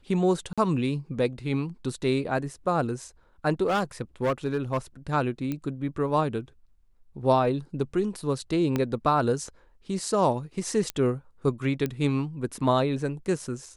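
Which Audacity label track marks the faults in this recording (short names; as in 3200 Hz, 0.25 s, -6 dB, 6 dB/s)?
0.530000	0.580000	gap 46 ms
3.660000	4.780000	clipped -20.5 dBFS
5.520000	5.520000	pop -18 dBFS
8.760000	8.760000	pop -13 dBFS
10.900000	10.900000	pop -13 dBFS
11.860000	11.860000	pop -16 dBFS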